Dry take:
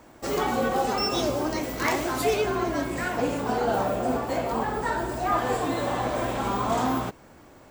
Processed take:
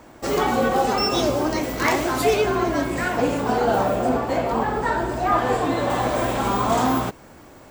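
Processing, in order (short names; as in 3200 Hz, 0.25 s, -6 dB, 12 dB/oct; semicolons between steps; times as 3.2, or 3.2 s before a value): high shelf 6300 Hz -2.5 dB, from 4.09 s -8.5 dB, from 5.9 s +2.5 dB; gain +5 dB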